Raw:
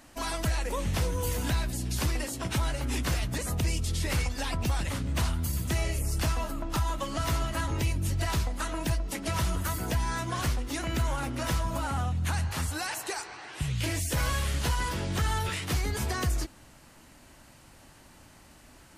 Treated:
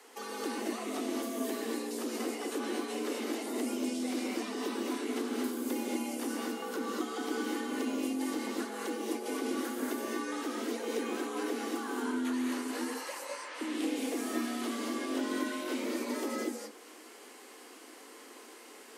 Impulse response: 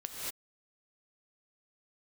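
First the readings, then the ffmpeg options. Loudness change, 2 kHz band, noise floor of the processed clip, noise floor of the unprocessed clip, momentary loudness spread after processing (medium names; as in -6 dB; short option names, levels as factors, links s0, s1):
-4.5 dB, -5.5 dB, -52 dBFS, -54 dBFS, 15 LU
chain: -filter_complex "[0:a]acrossover=split=280|1300[s0][s1][s2];[s0]acompressor=threshold=0.0251:ratio=4[s3];[s1]acompressor=threshold=0.00501:ratio=4[s4];[s2]acompressor=threshold=0.00398:ratio=4[s5];[s3][s4][s5]amix=inputs=3:normalize=0,highpass=100,afreqshift=170[s6];[1:a]atrim=start_sample=2205[s7];[s6][s7]afir=irnorm=-1:irlink=0,volume=1.26"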